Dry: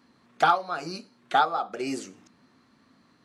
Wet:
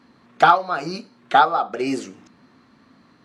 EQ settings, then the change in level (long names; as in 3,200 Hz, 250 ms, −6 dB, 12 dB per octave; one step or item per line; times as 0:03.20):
high-shelf EQ 6,000 Hz −10 dB
+7.5 dB